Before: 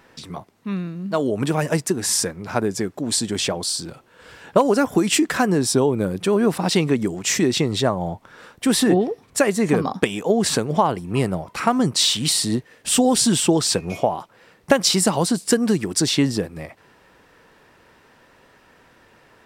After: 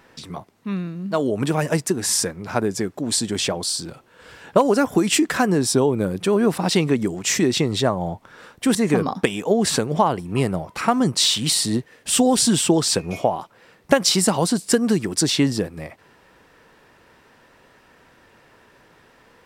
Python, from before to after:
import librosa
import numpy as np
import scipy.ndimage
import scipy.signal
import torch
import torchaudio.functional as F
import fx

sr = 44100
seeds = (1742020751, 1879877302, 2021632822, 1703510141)

y = fx.edit(x, sr, fx.cut(start_s=8.75, length_s=0.79), tone=tone)